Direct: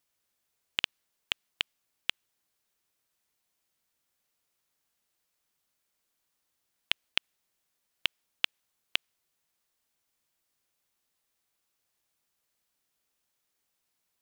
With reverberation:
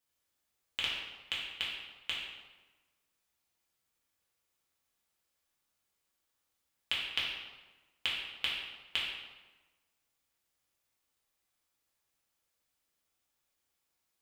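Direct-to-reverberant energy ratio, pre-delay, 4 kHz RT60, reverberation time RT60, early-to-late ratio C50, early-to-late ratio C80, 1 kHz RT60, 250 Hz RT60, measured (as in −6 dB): −6.5 dB, 3 ms, 0.85 s, 1.2 s, 1.0 dB, 3.5 dB, 1.2 s, 1.3 s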